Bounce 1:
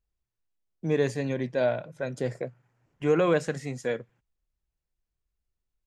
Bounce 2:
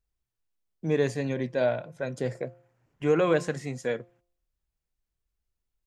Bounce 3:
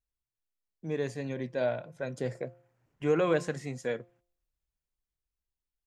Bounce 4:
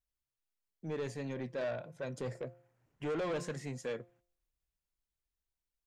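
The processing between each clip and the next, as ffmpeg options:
ffmpeg -i in.wav -af "bandreject=frequency=174.8:width_type=h:width=4,bandreject=frequency=349.6:width_type=h:width=4,bandreject=frequency=524.4:width_type=h:width=4,bandreject=frequency=699.2:width_type=h:width=4,bandreject=frequency=874:width_type=h:width=4,bandreject=frequency=1048.8:width_type=h:width=4,bandreject=frequency=1223.6:width_type=h:width=4" out.wav
ffmpeg -i in.wav -af "dynaudnorm=framelen=250:gausssize=11:maxgain=6dB,volume=-9dB" out.wav
ffmpeg -i in.wav -af "asoftclip=type=tanh:threshold=-30dB,volume=-2dB" out.wav

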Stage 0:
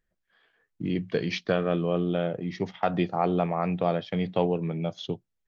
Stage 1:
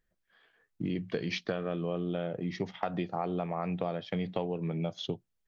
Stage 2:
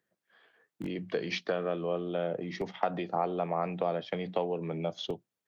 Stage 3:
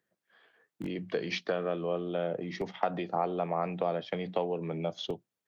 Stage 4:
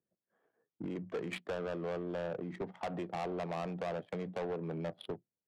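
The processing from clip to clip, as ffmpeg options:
ffmpeg -i in.wav -af "acompressor=threshold=-29dB:ratio=6" out.wav
ffmpeg -i in.wav -filter_complex "[0:a]equalizer=frequency=580:width_type=o:width=2.7:gain=4.5,acrossover=split=110|380|1300[link_01][link_02][link_03][link_04];[link_01]acrusher=bits=4:dc=4:mix=0:aa=0.000001[link_05];[link_02]alimiter=level_in=9.5dB:limit=-24dB:level=0:latency=1:release=32,volume=-9.5dB[link_06];[link_05][link_06][link_03][link_04]amix=inputs=4:normalize=0" out.wav
ffmpeg -i in.wav -af anull out.wav
ffmpeg -i in.wav -af "aresample=11025,volume=29dB,asoftclip=hard,volume=-29dB,aresample=44100,adynamicsmooth=sensitivity=5:basefreq=680,volume=-3dB" out.wav

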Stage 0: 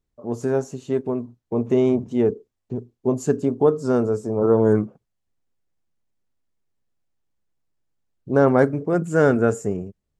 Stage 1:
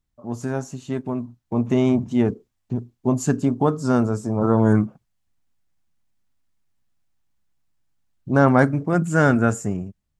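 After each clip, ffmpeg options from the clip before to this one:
ffmpeg -i in.wav -af "equalizer=frequency=440:width=1.9:gain=-12,dynaudnorm=framelen=530:gausssize=5:maxgain=4dB,volume=1.5dB" out.wav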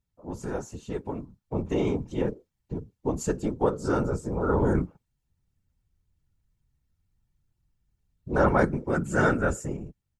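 ffmpeg -i in.wav -af "aecho=1:1:2.2:0.47,afftfilt=real='hypot(re,im)*cos(2*PI*random(0))':imag='hypot(re,im)*sin(2*PI*random(1))':win_size=512:overlap=0.75" out.wav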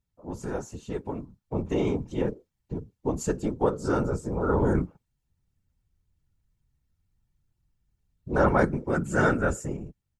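ffmpeg -i in.wav -af anull out.wav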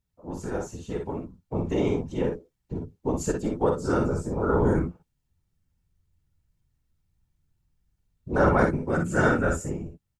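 ffmpeg -i in.wav -af "aecho=1:1:47|59:0.447|0.422" out.wav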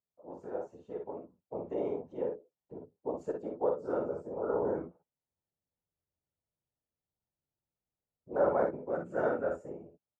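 ffmpeg -i in.wav -af "bandpass=frequency=590:width_type=q:width=2:csg=0,volume=-3dB" out.wav

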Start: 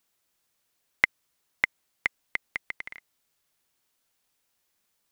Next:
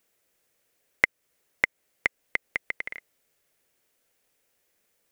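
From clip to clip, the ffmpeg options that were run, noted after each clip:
ffmpeg -i in.wav -filter_complex "[0:a]equalizer=frequency=500:width_type=o:width=1:gain=9,equalizer=frequency=1000:width_type=o:width=1:gain=-5,equalizer=frequency=2000:width_type=o:width=1:gain=4,equalizer=frequency=4000:width_type=o:width=1:gain=-4,asplit=2[link_01][link_02];[link_02]acompressor=threshold=-28dB:ratio=6,volume=1.5dB[link_03];[link_01][link_03]amix=inputs=2:normalize=0,volume=-4dB" out.wav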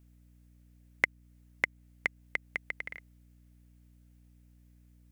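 ffmpeg -i in.wav -af "aeval=exprs='val(0)+0.00224*(sin(2*PI*60*n/s)+sin(2*PI*2*60*n/s)/2+sin(2*PI*3*60*n/s)/3+sin(2*PI*4*60*n/s)/4+sin(2*PI*5*60*n/s)/5)':channel_layout=same,volume=-5.5dB" out.wav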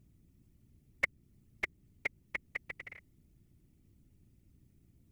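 ffmpeg -i in.wav -af "bandreject=frequency=1600:width=6.8,afftfilt=real='hypot(re,im)*cos(2*PI*random(0))':imag='hypot(re,im)*sin(2*PI*random(1))':win_size=512:overlap=0.75,volume=1.5dB" out.wav

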